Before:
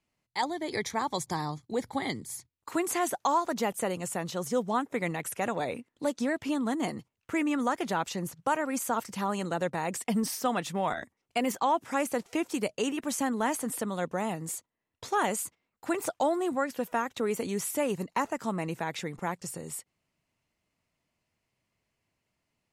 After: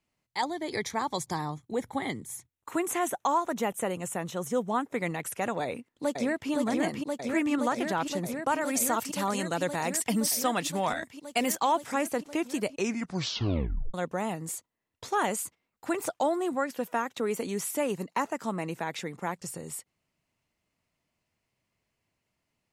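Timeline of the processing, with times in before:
1.38–4.83 s: peaking EQ 4.7 kHz -14 dB 0.29 oct
5.63–6.51 s: echo throw 520 ms, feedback 85%, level -2.5 dB
8.61–11.92 s: treble shelf 3 kHz +8.5 dB
12.70 s: tape stop 1.24 s
16.17–19.36 s: high-pass 140 Hz

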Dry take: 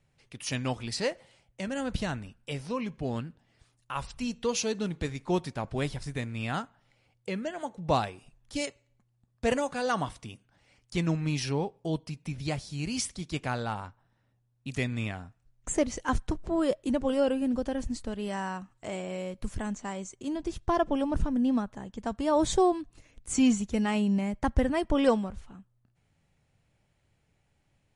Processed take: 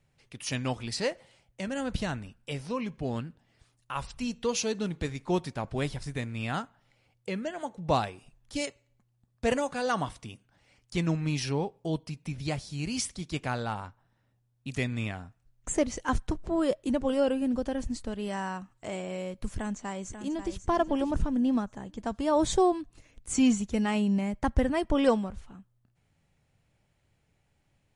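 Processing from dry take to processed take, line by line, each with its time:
19.49–20.57 s: echo throw 540 ms, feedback 30%, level -9.5 dB

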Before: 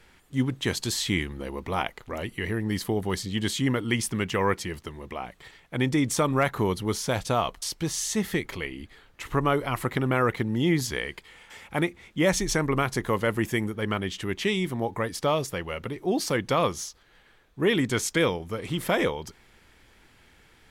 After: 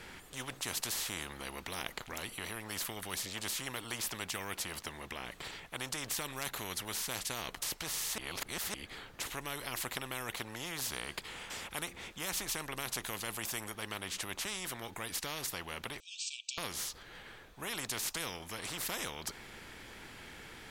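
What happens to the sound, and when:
8.18–8.74 s: reverse
16.00–16.58 s: brick-wall FIR band-pass 2.3–8.5 kHz
whole clip: spectrum-flattening compressor 4:1; trim -6.5 dB

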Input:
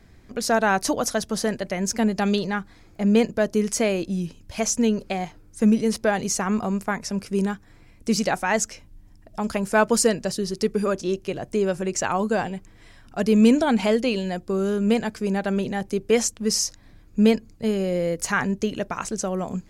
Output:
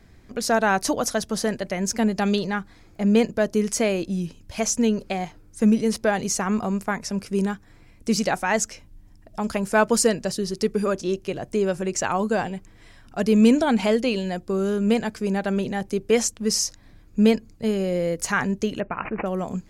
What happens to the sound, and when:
18.80–19.26 s: careless resampling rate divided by 8×, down none, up filtered

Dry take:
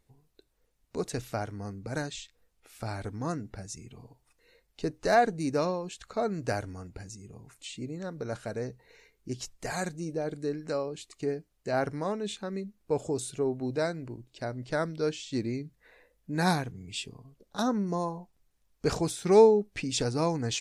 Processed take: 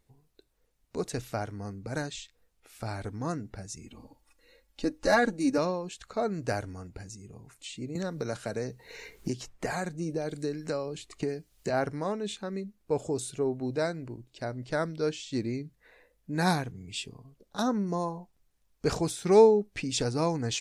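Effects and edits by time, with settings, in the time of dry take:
3.83–5.58 s: comb 3.6 ms, depth 89%
7.95–11.70 s: three bands compressed up and down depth 100%

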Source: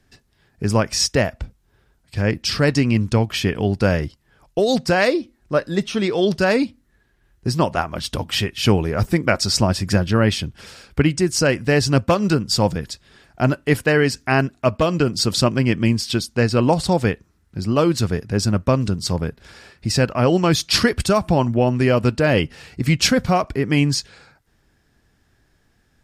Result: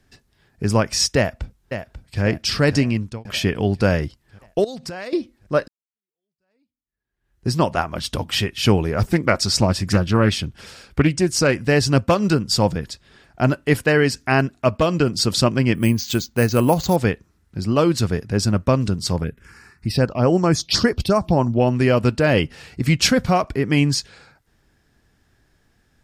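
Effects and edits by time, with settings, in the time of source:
1.17–2.22 s: echo throw 540 ms, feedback 55%, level -9 dB
2.78–3.25 s: fade out
4.64–5.13 s: compression 10:1, threshold -28 dBFS
5.68–7.47 s: fade in exponential
9.01–11.62 s: loudspeaker Doppler distortion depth 0.26 ms
12.65–13.42 s: treble shelf 5.3 kHz -4 dB
15.75–16.96 s: careless resampling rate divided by 4×, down filtered, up hold
19.23–21.60 s: touch-sensitive phaser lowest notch 530 Hz, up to 3.7 kHz, full sweep at -11.5 dBFS

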